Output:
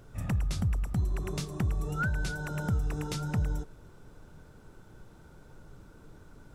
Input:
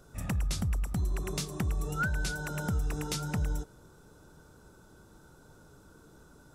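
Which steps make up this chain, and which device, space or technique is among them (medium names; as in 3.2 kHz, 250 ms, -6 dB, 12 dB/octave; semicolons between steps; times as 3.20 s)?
car interior (peaking EQ 110 Hz +5 dB 0.77 oct; treble shelf 3.9 kHz -7 dB; brown noise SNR 20 dB)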